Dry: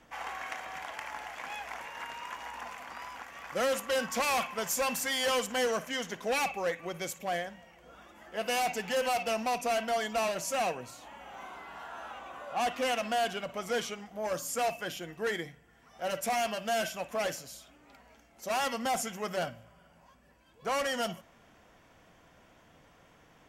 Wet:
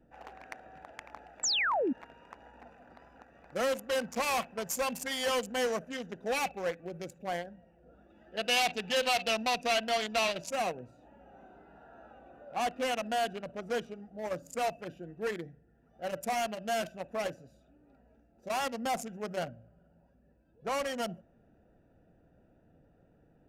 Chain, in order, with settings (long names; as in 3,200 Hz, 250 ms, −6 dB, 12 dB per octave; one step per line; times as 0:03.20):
adaptive Wiener filter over 41 samples
0:01.43–0:01.93: sound drawn into the spectrogram fall 230–8,000 Hz −29 dBFS
0:08.10–0:10.50: parametric band 3,500 Hz +11.5 dB 1.5 octaves